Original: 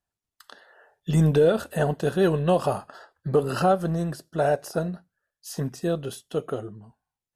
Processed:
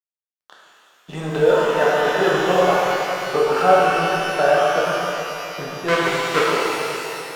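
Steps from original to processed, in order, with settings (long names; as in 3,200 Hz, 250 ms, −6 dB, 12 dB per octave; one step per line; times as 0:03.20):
0:05.88–0:06.47: each half-wave held at its own peak
low-pass filter 1,700 Hz 12 dB per octave
noise gate with hold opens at −43 dBFS
low-shelf EQ 110 Hz −9.5 dB
in parallel at −1 dB: speech leveller
on the sum: spectral tilt +4.5 dB per octave
dead-zone distortion −40 dBFS
on a send: delay that swaps between a low-pass and a high-pass 137 ms, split 1,200 Hz, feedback 78%, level −12 dB
on the sum: reverb with rising layers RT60 2.5 s, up +12 semitones, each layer −8 dB, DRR −5.5 dB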